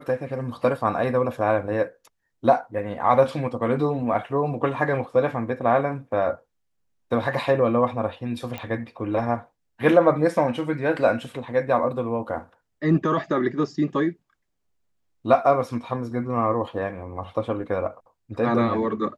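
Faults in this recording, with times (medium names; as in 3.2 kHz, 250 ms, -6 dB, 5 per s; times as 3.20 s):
8.58 s: pop -18 dBFS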